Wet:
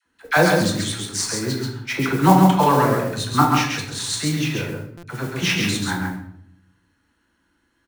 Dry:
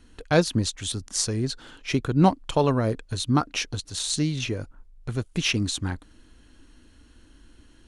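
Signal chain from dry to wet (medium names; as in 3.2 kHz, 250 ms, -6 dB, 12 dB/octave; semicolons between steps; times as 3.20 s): gate -41 dBFS, range -15 dB; high-pass 100 Hz 12 dB/octave; high-order bell 1.3 kHz +8.5 dB; band-stop 1.1 kHz, Q 25; phase dispersion lows, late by 59 ms, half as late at 640 Hz; modulation noise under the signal 19 dB; on a send: delay 135 ms -4 dB; on the sum: simulated room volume 140 m³, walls mixed, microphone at 0.74 m; buffer glitch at 4.97 s, samples 256, times 9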